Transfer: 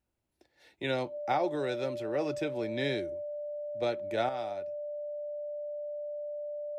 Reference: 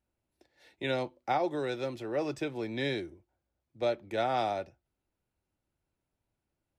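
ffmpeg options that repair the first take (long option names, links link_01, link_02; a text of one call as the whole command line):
ffmpeg -i in.wav -af "bandreject=frequency=590:width=30,asetnsamples=nb_out_samples=441:pad=0,asendcmd='4.29 volume volume 9dB',volume=0dB" out.wav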